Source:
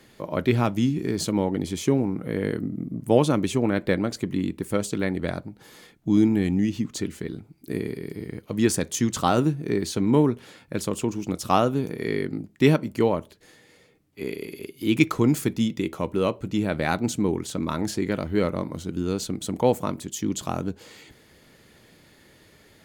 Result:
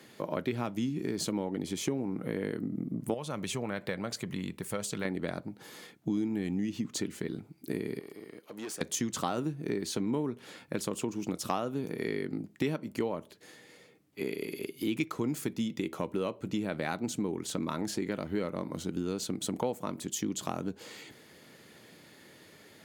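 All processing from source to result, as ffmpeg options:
ffmpeg -i in.wav -filter_complex "[0:a]asettb=1/sr,asplit=3[link_01][link_02][link_03];[link_01]atrim=end=3.144[link_04];[link_02]atrim=start=3.14:end=5.05,asetpts=PTS-STARTPTS,afade=type=in:duration=0.004:curve=qsin,afade=type=out:start_time=1.906:duration=0.004:curve=qsin,equalizer=frequency=300:width_type=o:width=0.89:gain=-11.5,acompressor=threshold=-32dB:ratio=1.5:attack=3.2:release=140:knee=1:detection=peak[link_05];[link_03]atrim=start=5.046[link_06];[link_04][link_05]acrossfade=duration=0.004:curve1=hsin:curve2=qsin[link_07];[link_07][link_06]acrossfade=duration=0.004:curve1=qsin:curve2=hsin,asettb=1/sr,asplit=3[link_08][link_09][link_10];[link_08]atrim=end=7.994[link_11];[link_09]atrim=start=7.99:end=8.81,asetpts=PTS-STARTPTS,afade=type=in:duration=0.004:curve=qsin,afade=type=out:start_time=0.816:duration=0.004:curve=qsin,highpass=360,acompressor=threshold=-47dB:ratio=1.5:attack=3.2:release=140:knee=1:detection=peak,aeval=exprs='(tanh(56.2*val(0)+0.4)-tanh(0.4))/56.2':channel_layout=same[link_12];[link_10]atrim=start=8.806[link_13];[link_11][link_12]acrossfade=duration=0.004:curve1=hsin:curve2=qsin[link_14];[link_14][link_13]acrossfade=duration=0.004:curve1=qsin:curve2=hsin,highpass=140,acompressor=threshold=-30dB:ratio=4" out.wav

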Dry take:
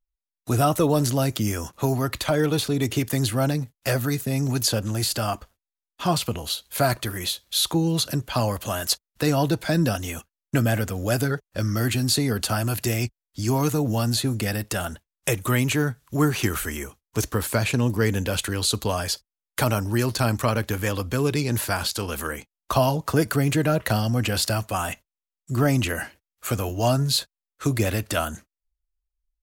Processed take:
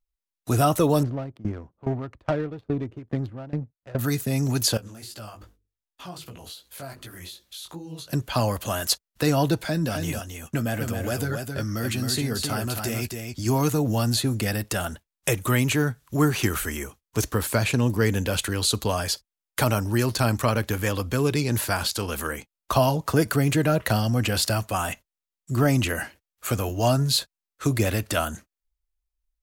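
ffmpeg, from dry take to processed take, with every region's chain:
ffmpeg -i in.wav -filter_complex "[0:a]asettb=1/sr,asplit=3[link_01][link_02][link_03];[link_01]atrim=end=1.034[link_04];[link_02]atrim=start=1.03:end=3.99,asetpts=PTS-STARTPTS,afade=type=in:duration=0.004:curve=qsin,afade=type=out:start_time=2.956:duration=0.004:curve=qsin,adynamicsmooth=sensitivity=1:basefreq=530,aeval=exprs='val(0)*pow(10,-21*if(lt(mod(2.4*n/s,1),2*abs(2.4)/1000),1-mod(2.4*n/s,1)/(2*abs(2.4)/1000),(mod(2.4*n/s,1)-2*abs(2.4)/1000)/(1-2*abs(2.4)/1000))/20)':channel_layout=same[link_05];[link_03]atrim=start=3.986[link_06];[link_04][link_05]acrossfade=duration=0.004:curve1=hsin:curve2=qsin[link_07];[link_07][link_06]acrossfade=duration=0.004:curve1=qsin:curve2=hsin,asettb=1/sr,asplit=3[link_08][link_09][link_10];[link_08]atrim=end=4.774[link_11];[link_09]atrim=start=4.77:end=8.13,asetpts=PTS-STARTPTS,afade=type=in:duration=0.004:curve=qsin,afade=type=out:start_time=3.356:duration=0.004:curve=qsin,bandreject=frequency=50:width_type=h:width=6,bandreject=frequency=100:width_type=h:width=6,bandreject=frequency=150:width_type=h:width=6,bandreject=frequency=200:width_type=h:width=6,bandreject=frequency=250:width_type=h:width=6,bandreject=frequency=300:width_type=h:width=6,bandreject=frequency=350:width_type=h:width=6,bandreject=frequency=400:width_type=h:width=6,bandreject=frequency=450:width_type=h:width=6,bandreject=frequency=500:width_type=h:width=6,acompressor=threshold=-37dB:ratio=3:attack=3.2:release=140:knee=1:detection=peak,flanger=delay=15.5:depth=6.9:speed=2.6[link_12];[link_10]atrim=start=8.126[link_13];[link_11][link_12]acrossfade=duration=0.004:curve1=hsin:curve2=qsin[link_14];[link_14][link_13]acrossfade=duration=0.004:curve1=qsin:curve2=hsin,asettb=1/sr,asplit=3[link_15][link_16][link_17];[link_15]atrim=end=9.634[link_18];[link_16]atrim=start=9.63:end=13.46,asetpts=PTS-STARTPTS,afade=type=in:duration=0.004:curve=qsin,afade=type=out:start_time=3.826:duration=0.004:curve=qsin,acompressor=threshold=-30dB:ratio=1.5:attack=3.2:release=140:knee=1:detection=peak,asplit=2[link_19][link_20];[link_20]adelay=13,volume=-11.5dB[link_21];[link_19][link_21]amix=inputs=2:normalize=0,atrim=end_sample=168903,aecho=1:1:267:0.531,atrim=end_sample=168903[link_22];[link_17]atrim=start=13.456[link_23];[link_18][link_22]acrossfade=duration=0.004:curve1=hsin:curve2=qsin[link_24];[link_24][link_23]acrossfade=duration=0.004:curve1=qsin:curve2=hsin" out.wav

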